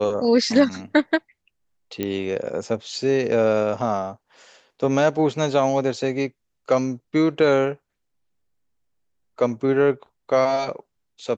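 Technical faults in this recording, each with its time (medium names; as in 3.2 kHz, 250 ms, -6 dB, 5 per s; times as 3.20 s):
2.03 s: pop -12 dBFS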